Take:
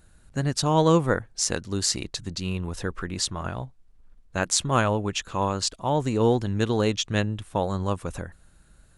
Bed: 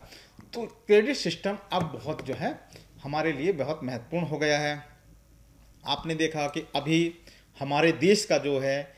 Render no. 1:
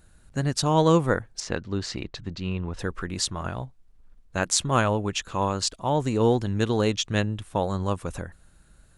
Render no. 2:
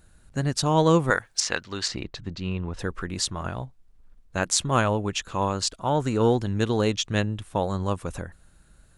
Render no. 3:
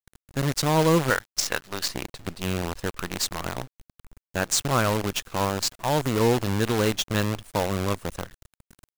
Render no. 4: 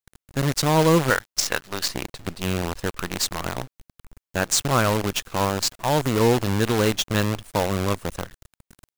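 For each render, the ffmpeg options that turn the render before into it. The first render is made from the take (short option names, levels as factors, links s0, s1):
-filter_complex "[0:a]asettb=1/sr,asplit=3[s0][s1][s2];[s0]atrim=end=1.404[s3];[s1]atrim=start=1.4:end=2.79,asetpts=PTS-STARTPTS,afade=t=in:d=0.004:c=qsin,afade=t=out:st=1.386:d=0.004:c=qsin,lowpass=3100[s4];[s2]atrim=start=2.786[s5];[s3][s4]acrossfade=d=0.004:c1=hsin:c2=qsin[s6];[s6][s5]acrossfade=d=0.004:c1=qsin:c2=hsin"
-filter_complex "[0:a]asettb=1/sr,asplit=3[s0][s1][s2];[s0]atrim=end=1.104[s3];[s1]atrim=start=1.1:end=1.88,asetpts=PTS-STARTPTS,afade=t=in:d=0.004:c=qsin,afade=t=out:st=0.776:d=0.004:c=qsin,tiltshelf=f=640:g=-9.5[s4];[s2]atrim=start=1.876[s5];[s3][s4]acrossfade=d=0.004:c1=hsin:c2=qsin[s6];[s6][s5]acrossfade=d=0.004:c1=qsin:c2=hsin,asettb=1/sr,asplit=3[s7][s8][s9];[s7]atrim=end=5.744[s10];[s8]atrim=start=5.74:end=6.31,asetpts=PTS-STARTPTS,afade=t=in:d=0.004:c=qsin,afade=t=out:st=0.566:d=0.004:c=qsin,equalizer=f=1400:t=o:w=0.33:g=9.5[s11];[s9]atrim=start=6.306[s12];[s10][s11]acrossfade=d=0.004:c1=hsin:c2=qsin[s13];[s13][s12]acrossfade=d=0.004:c1=qsin:c2=hsin"
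-af "asoftclip=type=tanh:threshold=0.398,acrusher=bits=5:dc=4:mix=0:aa=0.000001"
-af "volume=1.33"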